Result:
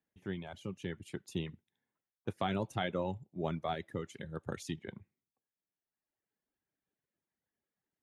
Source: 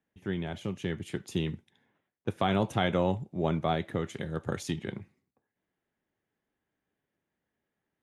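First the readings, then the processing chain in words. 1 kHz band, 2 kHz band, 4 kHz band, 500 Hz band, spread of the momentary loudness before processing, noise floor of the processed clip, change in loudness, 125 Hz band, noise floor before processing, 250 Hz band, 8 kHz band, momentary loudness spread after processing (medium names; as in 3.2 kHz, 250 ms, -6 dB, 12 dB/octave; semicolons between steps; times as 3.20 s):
-7.0 dB, -6.5 dB, -7.0 dB, -7.5 dB, 10 LU, under -85 dBFS, -7.5 dB, -8.5 dB, under -85 dBFS, -8.0 dB, -6.5 dB, 10 LU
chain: reverb removal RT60 1.4 s; trim -6 dB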